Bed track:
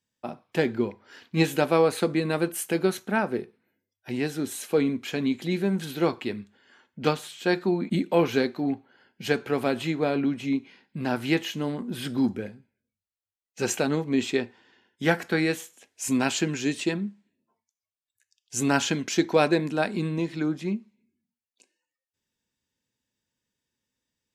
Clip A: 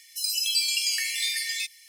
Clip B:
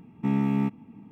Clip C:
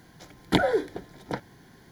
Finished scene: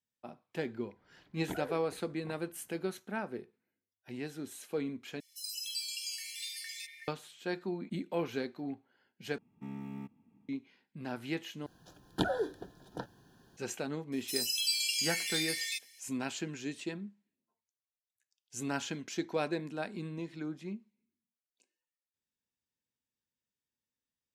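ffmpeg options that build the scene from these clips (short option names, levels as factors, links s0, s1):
-filter_complex "[3:a]asplit=2[s0][s1];[1:a]asplit=2[s2][s3];[0:a]volume=0.237[s4];[s0]lowpass=2300[s5];[s2]acrossover=split=2200[s6][s7];[s6]adelay=460[s8];[s8][s7]amix=inputs=2:normalize=0[s9];[2:a]aemphasis=mode=production:type=cd[s10];[s1]asuperstop=centerf=2100:order=8:qfactor=3.3[s11];[s4]asplit=4[s12][s13][s14][s15];[s12]atrim=end=5.204[s16];[s9]atrim=end=1.88,asetpts=PTS-STARTPTS,volume=0.224[s17];[s13]atrim=start=7.076:end=9.384[s18];[s10]atrim=end=1.11,asetpts=PTS-STARTPTS,volume=0.126[s19];[s14]atrim=start=10.486:end=11.664[s20];[s11]atrim=end=1.91,asetpts=PTS-STARTPTS,volume=0.355[s21];[s15]atrim=start=13.566[s22];[s5]atrim=end=1.91,asetpts=PTS-STARTPTS,volume=0.126,afade=t=in:d=0.004:c=hsin,afade=t=out:st=1.906:d=0.004:c=hsin,adelay=960[s23];[s3]atrim=end=1.88,asetpts=PTS-STARTPTS,volume=0.473,afade=t=in:d=0.004:c=hsin,afade=t=out:st=1.876:d=0.004:c=hsin,adelay=622692S[s24];[s16][s17]acrossfade=d=0.004:c1=hsin:c2=hsin[s25];[s25][s18]acrossfade=d=0.004:c1=hsin:c2=hsin[s26];[s26][s19]acrossfade=d=0.004:c1=hsin:c2=hsin[s27];[s27][s20]acrossfade=d=0.004:c1=hsin:c2=hsin[s28];[s28][s21]acrossfade=d=0.004:c1=hsin:c2=hsin[s29];[s29][s22]acrossfade=d=0.004:c1=hsin:c2=hsin[s30];[s30][s23][s24]amix=inputs=3:normalize=0"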